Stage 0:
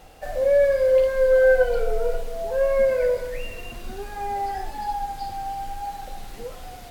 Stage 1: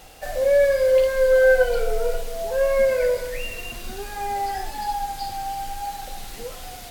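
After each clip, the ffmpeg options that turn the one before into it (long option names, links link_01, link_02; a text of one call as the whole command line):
ffmpeg -i in.wav -af "highshelf=frequency=2100:gain=9" out.wav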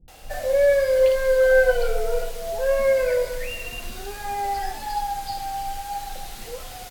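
ffmpeg -i in.wav -filter_complex "[0:a]acrossover=split=270[link_01][link_02];[link_02]adelay=80[link_03];[link_01][link_03]amix=inputs=2:normalize=0" out.wav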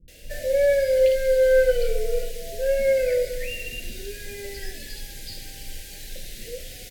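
ffmpeg -i in.wav -af "asuperstop=centerf=1000:order=8:qfactor=0.91" out.wav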